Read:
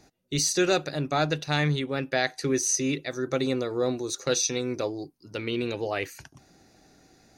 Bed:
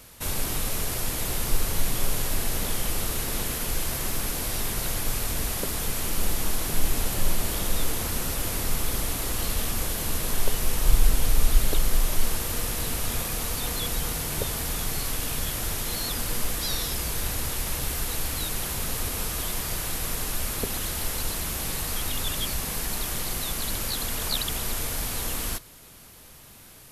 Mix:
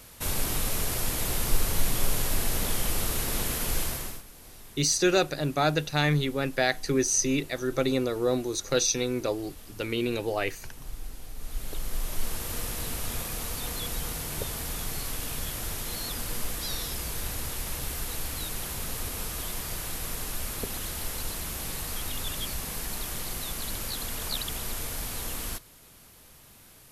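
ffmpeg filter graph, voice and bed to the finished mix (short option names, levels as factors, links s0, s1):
-filter_complex "[0:a]adelay=4450,volume=1.06[s0];[1:a]volume=5.62,afade=t=out:st=3.8:d=0.43:silence=0.105925,afade=t=in:st=11.36:d=1.18:silence=0.16788[s1];[s0][s1]amix=inputs=2:normalize=0"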